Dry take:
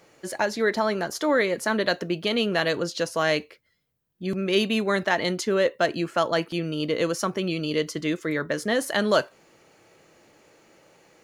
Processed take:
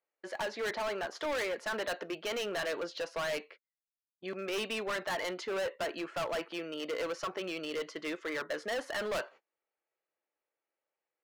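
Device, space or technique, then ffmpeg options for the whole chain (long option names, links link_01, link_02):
walkie-talkie: -filter_complex "[0:a]highpass=520,lowpass=2800,asoftclip=type=hard:threshold=-29dB,agate=range=-30dB:threshold=-51dB:ratio=16:detection=peak,asettb=1/sr,asplit=3[link_01][link_02][link_03];[link_01]atrim=end=6.454[link_04];[link_02]atrim=start=6.45:end=6.94,asetpts=PTS-STARTPTS,afade=type=in:duration=0.004:curve=qsin,afade=type=out:start_time=0.486:duration=0.004:curve=qsin,highpass=150[link_05];[link_03]atrim=start=6.936[link_06];[link_04][link_05]acrossfade=duration=0.004:curve1=hsin:curve2=qsin[link_07];[link_07][link_06]acrossfade=duration=0.004:curve1=qsin:curve2=hsin,highshelf=frequency=10000:gain=3,volume=-2.5dB"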